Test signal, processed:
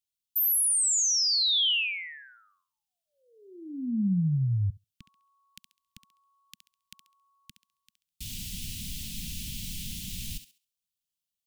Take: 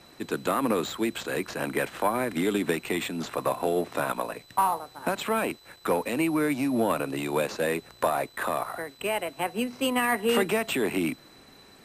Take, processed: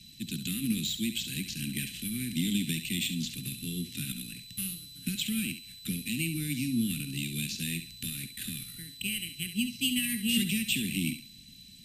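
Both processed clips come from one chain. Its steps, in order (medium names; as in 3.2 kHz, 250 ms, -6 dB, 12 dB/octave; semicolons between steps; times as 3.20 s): elliptic band-stop 210–2900 Hz, stop band 70 dB; thinning echo 68 ms, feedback 29%, high-pass 400 Hz, level -9.5 dB; trim +4 dB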